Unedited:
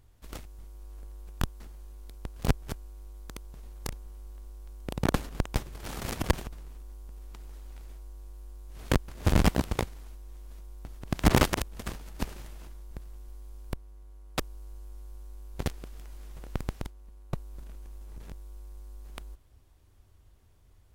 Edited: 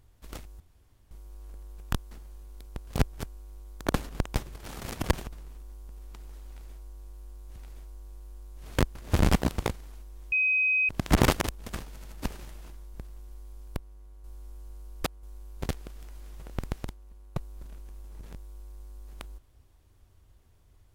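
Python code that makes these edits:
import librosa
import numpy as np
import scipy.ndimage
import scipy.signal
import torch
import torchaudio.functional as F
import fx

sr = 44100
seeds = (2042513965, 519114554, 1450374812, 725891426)

y = fx.edit(x, sr, fx.insert_room_tone(at_s=0.6, length_s=0.51),
    fx.cut(start_s=3.35, length_s=1.71),
    fx.clip_gain(start_s=5.76, length_s=0.45, db=-3.0),
    fx.repeat(start_s=7.69, length_s=1.07, count=2),
    fx.bleep(start_s=10.45, length_s=0.57, hz=2520.0, db=-21.5),
    fx.stutter(start_s=12.02, slice_s=0.08, count=3),
    fx.reverse_span(start_s=14.21, length_s=0.99), tone=tone)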